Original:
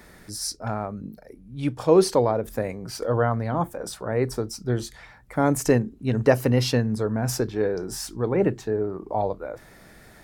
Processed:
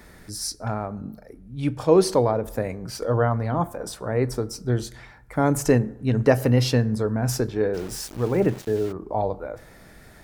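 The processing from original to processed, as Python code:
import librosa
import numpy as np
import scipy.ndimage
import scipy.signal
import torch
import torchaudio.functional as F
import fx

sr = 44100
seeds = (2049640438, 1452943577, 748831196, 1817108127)

y = fx.low_shelf(x, sr, hz=110.0, db=5.0)
y = fx.rev_fdn(y, sr, rt60_s=0.95, lf_ratio=0.95, hf_ratio=0.5, size_ms=68.0, drr_db=16.0)
y = fx.sample_gate(y, sr, floor_db=-36.0, at=(7.73, 8.91), fade=0.02)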